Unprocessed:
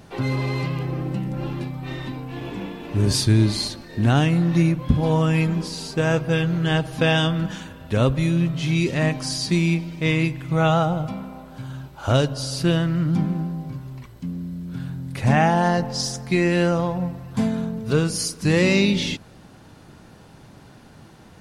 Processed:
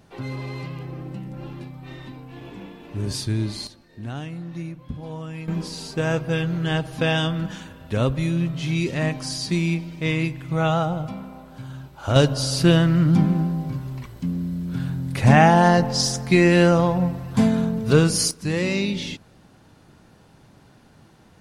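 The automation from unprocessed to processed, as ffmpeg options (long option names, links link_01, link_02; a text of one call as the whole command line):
ffmpeg -i in.wav -af "asetnsamples=nb_out_samples=441:pad=0,asendcmd='3.67 volume volume -14.5dB;5.48 volume volume -2.5dB;12.16 volume volume 4dB;18.31 volume volume -5.5dB',volume=-7.5dB" out.wav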